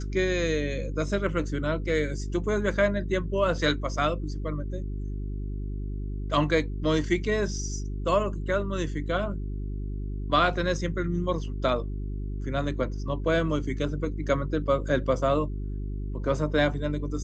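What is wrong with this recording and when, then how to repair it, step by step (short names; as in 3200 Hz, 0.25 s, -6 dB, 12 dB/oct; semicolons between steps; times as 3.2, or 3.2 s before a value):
hum 50 Hz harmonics 8 -32 dBFS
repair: de-hum 50 Hz, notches 8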